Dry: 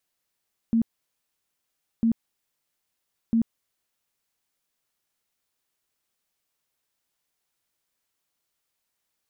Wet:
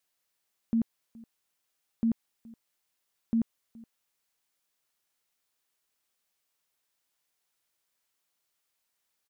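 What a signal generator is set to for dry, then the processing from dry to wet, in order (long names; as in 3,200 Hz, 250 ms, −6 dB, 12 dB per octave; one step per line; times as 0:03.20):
tone bursts 228 Hz, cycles 20, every 1.30 s, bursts 3, −17.5 dBFS
low-shelf EQ 360 Hz −6 dB
single-tap delay 421 ms −23 dB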